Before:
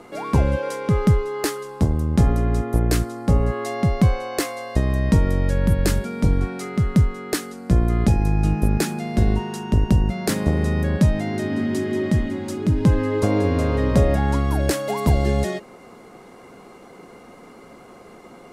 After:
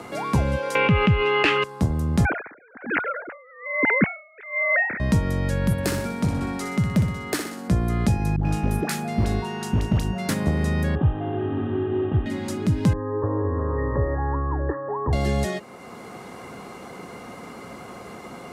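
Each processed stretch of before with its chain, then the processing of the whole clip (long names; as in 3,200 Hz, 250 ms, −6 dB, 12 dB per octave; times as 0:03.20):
0:00.75–0:01.64: low-pass with resonance 2,700 Hz, resonance Q 8 + envelope flattener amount 70%
0:02.25–0:05.00: three sine waves on the formant tracks + flat-topped bell 1,800 Hz +12.5 dB 1 octave + tremolo with a sine in dB 1.2 Hz, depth 34 dB
0:05.72–0:07.68: hard clipping −11.5 dBFS + high-pass filter 90 Hz + flutter between parallel walls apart 10.5 metres, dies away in 0.55 s
0:08.36–0:10.29: double-tracking delay 36 ms −10.5 dB + all-pass dispersion highs, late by 92 ms, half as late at 690 Hz + hard clipping −11 dBFS
0:10.95–0:12.26: variable-slope delta modulation 16 kbit/s + moving average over 20 samples + comb filter 2.5 ms, depth 89%
0:12.93–0:15.13: linear-phase brick-wall low-pass 1,900 Hz + phaser with its sweep stopped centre 1,000 Hz, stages 8
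whole clip: high-pass filter 78 Hz; parametric band 380 Hz −4.5 dB 1.4 octaves; multiband upward and downward compressor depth 40%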